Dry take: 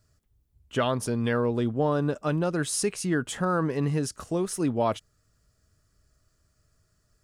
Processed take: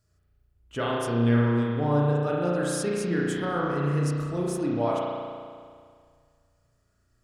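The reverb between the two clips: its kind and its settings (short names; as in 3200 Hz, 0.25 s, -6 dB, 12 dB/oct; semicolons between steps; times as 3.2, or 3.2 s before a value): spring tank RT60 2 s, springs 34 ms, chirp 35 ms, DRR -4.5 dB; gain -5.5 dB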